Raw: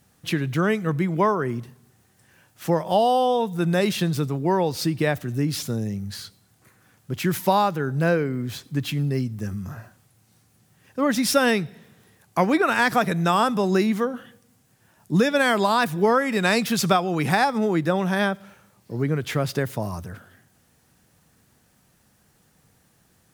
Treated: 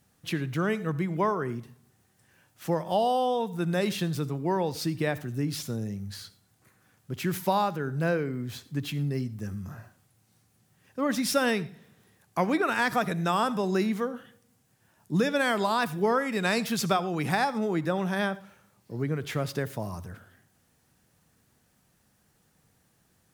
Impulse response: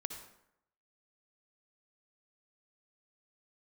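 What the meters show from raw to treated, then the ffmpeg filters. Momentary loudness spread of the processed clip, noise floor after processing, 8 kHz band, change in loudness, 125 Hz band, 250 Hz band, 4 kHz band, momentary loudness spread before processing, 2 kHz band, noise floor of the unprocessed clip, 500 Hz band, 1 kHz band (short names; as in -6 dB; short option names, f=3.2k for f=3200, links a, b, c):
12 LU, -68 dBFS, -6.0 dB, -6.0 dB, -6.0 dB, -6.0 dB, -6.0 dB, 12 LU, -6.0 dB, -62 dBFS, -6.0 dB, -6.0 dB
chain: -filter_complex "[0:a]asplit=2[a][b];[1:a]atrim=start_sample=2205,afade=t=out:st=0.18:d=0.01,atrim=end_sample=8379[c];[b][c]afir=irnorm=-1:irlink=0,volume=-7dB[d];[a][d]amix=inputs=2:normalize=0,volume=-8.5dB"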